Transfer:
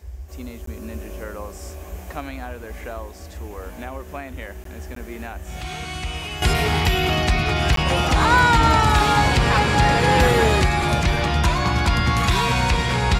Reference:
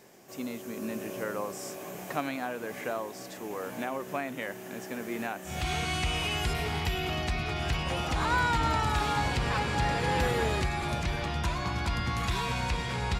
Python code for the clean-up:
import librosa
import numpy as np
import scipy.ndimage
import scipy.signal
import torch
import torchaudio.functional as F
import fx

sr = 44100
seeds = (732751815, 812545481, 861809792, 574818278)

y = fx.fix_interpolate(x, sr, at_s=(0.66, 4.64, 4.95, 7.76), length_ms=13.0)
y = fx.noise_reduce(y, sr, print_start_s=3.07, print_end_s=3.57, reduce_db=6.0)
y = fx.fix_level(y, sr, at_s=6.42, step_db=-11.5)